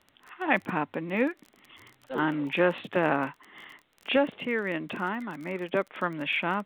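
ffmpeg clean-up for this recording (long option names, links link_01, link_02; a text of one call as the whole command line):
ffmpeg -i in.wav -af "adeclick=threshold=4,agate=range=-21dB:threshold=-54dB" out.wav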